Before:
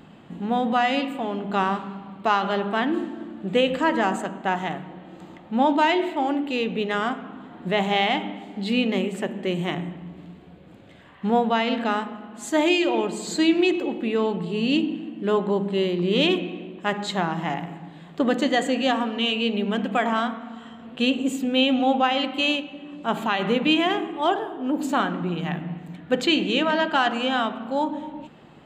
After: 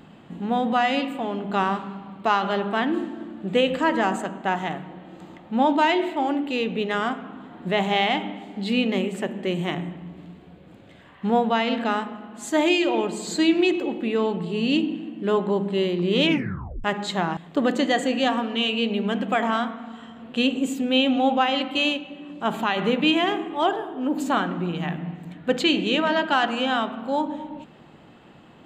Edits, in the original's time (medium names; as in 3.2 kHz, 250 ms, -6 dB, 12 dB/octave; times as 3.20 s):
16.24 s: tape stop 0.60 s
17.37–18.00 s: delete